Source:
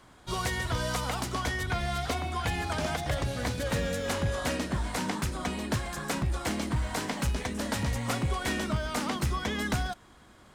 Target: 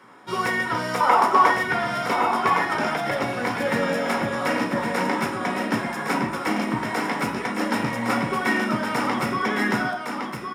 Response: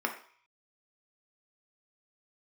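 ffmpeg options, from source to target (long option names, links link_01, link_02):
-filter_complex "[0:a]asettb=1/sr,asplit=3[link_01][link_02][link_03];[link_01]atrim=end=1.004[link_04];[link_02]atrim=start=1:end=1.51,asetpts=PTS-STARTPTS,afade=type=in:duration=0.004:curve=qsin,afade=type=out:start_time=0.506:duration=0.004:curve=qsin,equalizer=frequency=125:width_type=o:width=1:gain=-10,equalizer=frequency=500:width_type=o:width=1:gain=6,equalizer=frequency=1000:width_type=o:width=1:gain=11[link_05];[link_03]atrim=start=1.506[link_06];[link_04][link_05]acrossfade=duration=0.004:curve1=hsin:curve2=qsin[link_07];[link_07][link_06]acrossfade=duration=0.004:curve1=qsin:curve2=hsin,aecho=1:1:1111:0.531[link_08];[1:a]atrim=start_sample=2205[link_09];[link_08][link_09]afir=irnorm=-1:irlink=0,volume=1dB"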